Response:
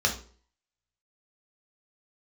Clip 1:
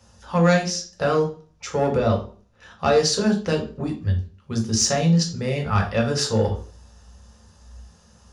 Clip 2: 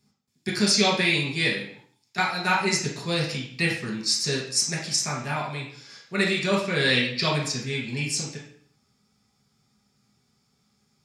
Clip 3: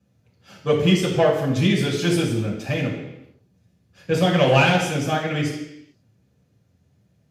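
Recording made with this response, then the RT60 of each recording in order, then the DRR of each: 1; 0.45, 0.60, 0.85 s; 0.5, -5.0, -6.0 dB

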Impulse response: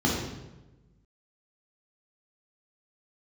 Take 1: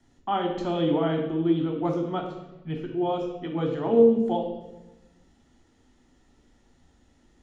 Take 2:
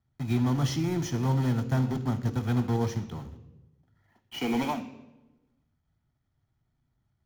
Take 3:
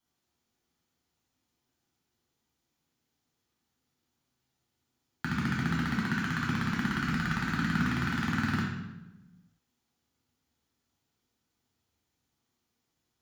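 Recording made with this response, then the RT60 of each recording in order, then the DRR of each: 3; 1.1, 1.1, 1.1 s; 1.5, 11.0, -4.0 dB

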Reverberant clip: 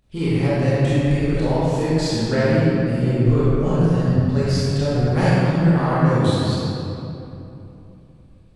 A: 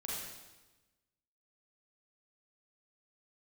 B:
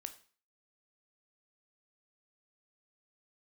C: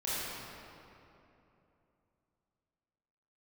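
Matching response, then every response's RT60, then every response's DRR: C; 1.1, 0.40, 3.0 s; -5.5, 8.0, -10.5 dB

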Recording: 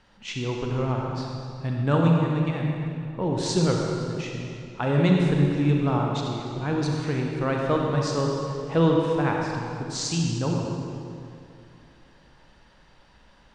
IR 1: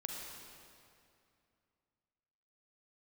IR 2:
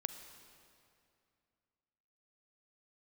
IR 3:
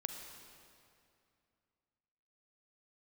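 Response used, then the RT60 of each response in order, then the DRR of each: 1; 2.5, 2.5, 2.5 s; -0.5, 8.5, 4.5 dB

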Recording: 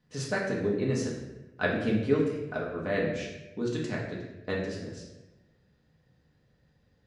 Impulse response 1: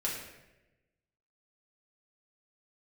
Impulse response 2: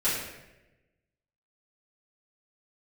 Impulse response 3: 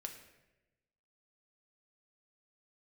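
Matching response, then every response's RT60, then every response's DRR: 1; 1.0, 1.0, 1.0 s; -4.5, -12.5, 3.5 dB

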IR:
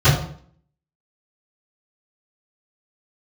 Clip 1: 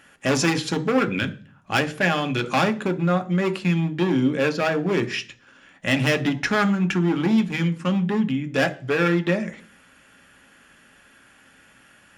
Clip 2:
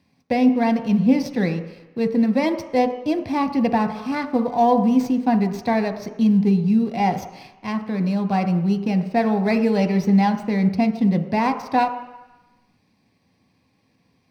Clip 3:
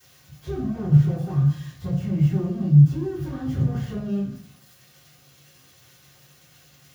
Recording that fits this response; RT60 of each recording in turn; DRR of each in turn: 3; 0.40, 1.0, 0.55 s; 7.0, 6.0, -22.0 dB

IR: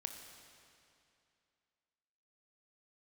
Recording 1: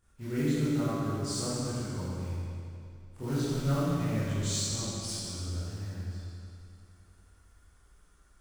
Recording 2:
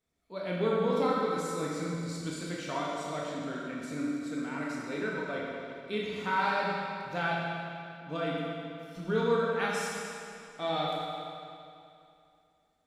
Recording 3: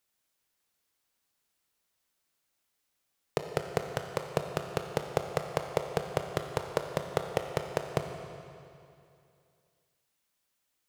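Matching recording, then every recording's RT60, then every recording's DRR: 3; 2.6, 2.6, 2.6 s; -12.0, -4.0, 4.5 dB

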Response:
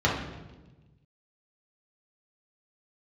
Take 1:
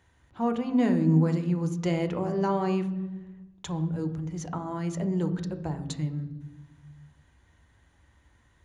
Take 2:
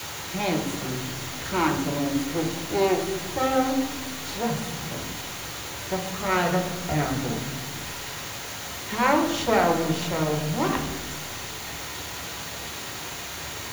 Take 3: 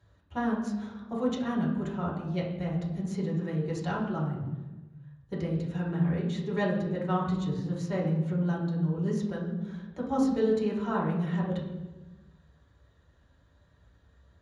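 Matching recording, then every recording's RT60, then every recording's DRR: 3; 1.2, 1.2, 1.2 s; 7.0, 1.5, -5.0 dB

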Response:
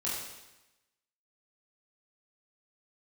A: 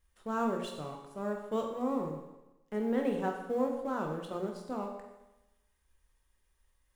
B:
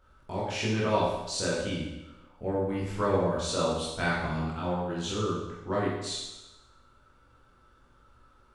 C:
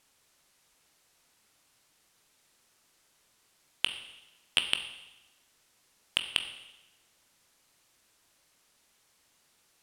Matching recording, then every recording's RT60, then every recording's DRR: B; 1.0, 1.0, 1.0 s; 1.5, -7.5, 6.5 dB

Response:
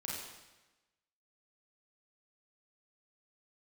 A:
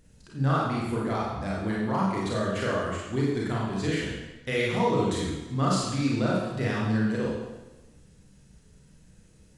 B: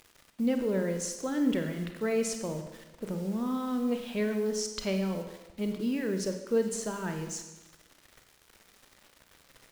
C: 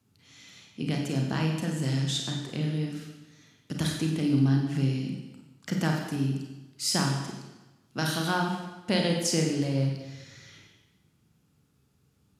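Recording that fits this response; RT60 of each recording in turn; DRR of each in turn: A; 1.1, 1.1, 1.1 s; -5.0, 5.5, 0.5 dB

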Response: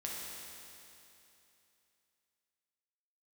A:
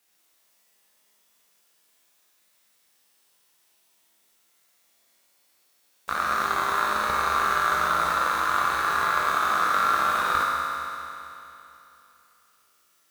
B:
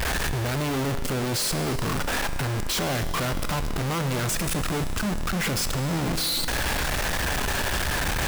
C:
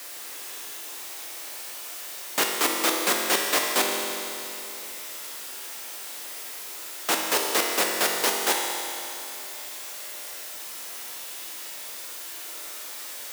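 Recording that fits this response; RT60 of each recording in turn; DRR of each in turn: A; 2.9, 2.9, 2.9 s; -4.5, 9.5, -0.5 dB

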